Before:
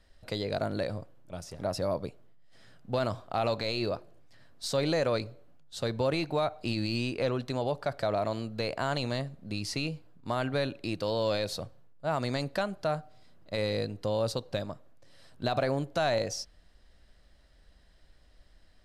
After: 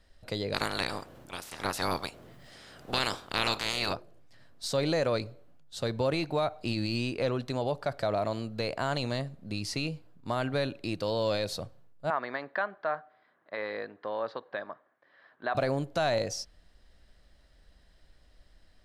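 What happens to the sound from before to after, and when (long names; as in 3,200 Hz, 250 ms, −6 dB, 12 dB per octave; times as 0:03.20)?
0:00.53–0:03.92: ceiling on every frequency bin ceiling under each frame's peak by 28 dB
0:12.10–0:15.55: loudspeaker in its box 440–2,900 Hz, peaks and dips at 520 Hz −4 dB, 1,100 Hz +5 dB, 1,700 Hz +9 dB, 2,700 Hz −8 dB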